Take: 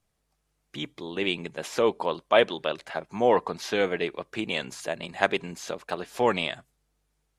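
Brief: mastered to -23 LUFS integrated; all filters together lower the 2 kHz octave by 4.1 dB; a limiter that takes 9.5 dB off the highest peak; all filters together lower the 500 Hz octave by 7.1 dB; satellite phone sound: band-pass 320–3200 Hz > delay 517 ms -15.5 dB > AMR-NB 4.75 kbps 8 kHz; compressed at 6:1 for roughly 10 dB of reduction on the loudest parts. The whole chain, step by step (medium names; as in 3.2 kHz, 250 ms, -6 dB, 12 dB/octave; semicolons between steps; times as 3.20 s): peaking EQ 500 Hz -7.5 dB; peaking EQ 2 kHz -4 dB; compression 6:1, threshold -30 dBFS; peak limiter -22.5 dBFS; band-pass 320–3200 Hz; delay 517 ms -15.5 dB; trim +20.5 dB; AMR-NB 4.75 kbps 8 kHz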